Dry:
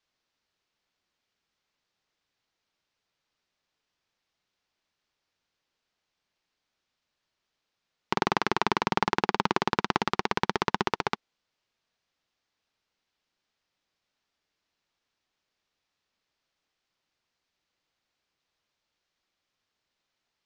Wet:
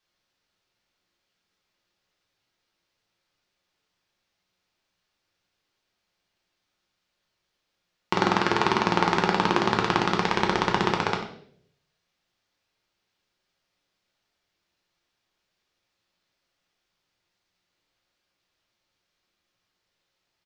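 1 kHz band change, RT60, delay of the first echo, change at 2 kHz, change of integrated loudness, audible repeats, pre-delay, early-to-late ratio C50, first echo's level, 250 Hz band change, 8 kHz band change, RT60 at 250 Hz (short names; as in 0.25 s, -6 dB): +3.5 dB, 0.65 s, 93 ms, +4.0 dB, +4.0 dB, 1, 6 ms, 7.0 dB, -12.5 dB, +6.0 dB, +3.5 dB, 0.75 s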